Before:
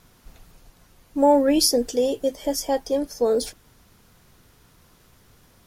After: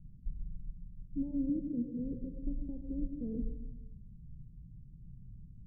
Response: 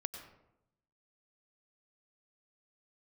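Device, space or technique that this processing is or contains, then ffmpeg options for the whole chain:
club heard from the street: -filter_complex "[0:a]asettb=1/sr,asplit=3[s0][s1][s2];[s0]atrim=end=1.494[s3];[s1]atrim=start=1.49:end=1.99,asetpts=PTS-STARTPTS,afade=t=in:d=0.004:c=qsin,afade=t=out:st=0.496:d=0.004:c=qsin,highpass=150[s4];[s2]atrim=start=1.986[s5];[s3][s4]acrossfade=d=0.004:c1=hsin:c2=qsin[s6];[s6][s5]acrossfade=d=0.004:c1=qsin:c2=hsin,equalizer=f=86:w=2:g=-8.5,alimiter=limit=0.178:level=0:latency=1,lowpass=f=160:w=0.5412,lowpass=f=160:w=1.3066[s7];[1:a]atrim=start_sample=2205[s8];[s7][s8]afir=irnorm=-1:irlink=0,volume=3.55"

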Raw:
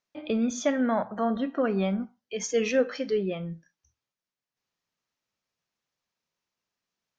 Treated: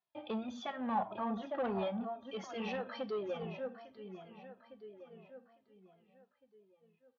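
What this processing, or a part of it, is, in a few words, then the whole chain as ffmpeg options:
barber-pole flanger into a guitar amplifier: -filter_complex "[0:a]asplit=2[s0][s1];[s1]adelay=855,lowpass=f=4000:p=1,volume=0.282,asplit=2[s2][s3];[s3]adelay=855,lowpass=f=4000:p=1,volume=0.47,asplit=2[s4][s5];[s5]adelay=855,lowpass=f=4000:p=1,volume=0.47,asplit=2[s6][s7];[s7]adelay=855,lowpass=f=4000:p=1,volume=0.47,asplit=2[s8][s9];[s9]adelay=855,lowpass=f=4000:p=1,volume=0.47[s10];[s0][s2][s4][s6][s8][s10]amix=inputs=6:normalize=0,asplit=2[s11][s12];[s12]adelay=2.3,afreqshift=-2.9[s13];[s11][s13]amix=inputs=2:normalize=1,asoftclip=type=tanh:threshold=0.0531,highpass=80,equalizer=f=170:t=q:w=4:g=-7,equalizer=f=280:t=q:w=4:g=-10,equalizer=f=460:t=q:w=4:g=-6,equalizer=f=830:t=q:w=4:g=7,equalizer=f=1500:t=q:w=4:g=-4,equalizer=f=2200:t=q:w=4:g=-8,lowpass=f=3700:w=0.5412,lowpass=f=3700:w=1.3066,volume=0.841"

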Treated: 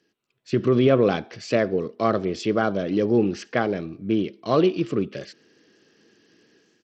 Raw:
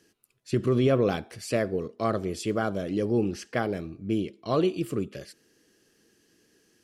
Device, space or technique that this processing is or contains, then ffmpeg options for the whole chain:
Bluetooth headset: -af "highpass=130,lowpass=5300,dynaudnorm=f=170:g=5:m=3.76,aresample=16000,aresample=44100,volume=0.596" -ar 32000 -c:a sbc -b:a 64k

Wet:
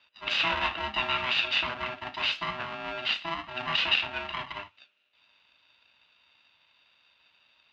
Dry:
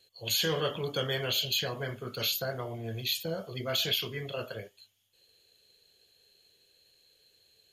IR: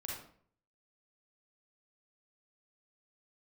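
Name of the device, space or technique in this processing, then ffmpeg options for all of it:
ring modulator pedal into a guitar cabinet: -af "aeval=exprs='val(0)*sgn(sin(2*PI*500*n/s))':c=same,highpass=92,equalizer=f=95:t=q:w=4:g=-8,equalizer=f=150:t=q:w=4:g=-6,equalizer=f=390:t=q:w=4:g=-9,equalizer=f=1400:t=q:w=4:g=7,equalizer=f=2700:t=q:w=4:g=9,lowpass=f=3800:w=0.5412,lowpass=f=3800:w=1.3066,volume=1.12"

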